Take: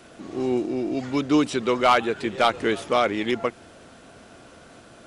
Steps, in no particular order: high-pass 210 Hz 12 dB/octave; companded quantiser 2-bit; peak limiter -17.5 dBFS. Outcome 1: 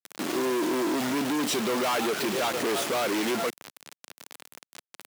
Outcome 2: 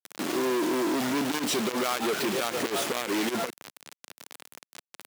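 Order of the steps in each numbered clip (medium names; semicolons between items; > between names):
peak limiter > companded quantiser > high-pass; companded quantiser > high-pass > peak limiter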